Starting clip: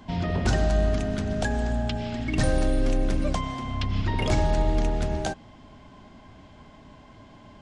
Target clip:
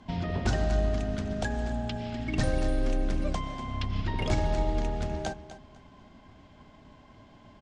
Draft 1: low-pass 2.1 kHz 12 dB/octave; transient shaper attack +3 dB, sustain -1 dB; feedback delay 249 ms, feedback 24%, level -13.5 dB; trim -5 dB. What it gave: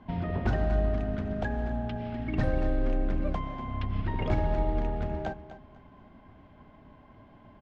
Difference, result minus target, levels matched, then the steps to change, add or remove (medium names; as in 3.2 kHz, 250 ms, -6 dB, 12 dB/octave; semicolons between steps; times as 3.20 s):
8 kHz band -19.5 dB
change: low-pass 8.4 kHz 12 dB/octave